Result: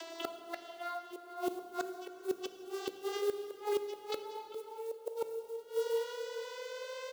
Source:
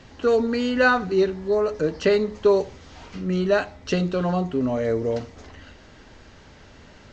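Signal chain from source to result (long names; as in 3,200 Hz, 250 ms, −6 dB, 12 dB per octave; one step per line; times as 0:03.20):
vocoder with a gliding carrier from E4, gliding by +8 semitones
floating-point word with a short mantissa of 4 bits
parametric band 1,800 Hz −14.5 dB 0.21 octaves
repeating echo 419 ms, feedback 20%, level −5.5 dB
gate with flip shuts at −14 dBFS, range −35 dB
high-pass filter 440 Hz 24 dB per octave
high-shelf EQ 2,700 Hz +8.5 dB
gate with flip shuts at −31 dBFS, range −25 dB
notch filter 2,400 Hz, Q 14
dense smooth reverb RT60 2.8 s, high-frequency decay 0.8×, DRR 8.5 dB
upward compression, threshold −51 dBFS
level +8.5 dB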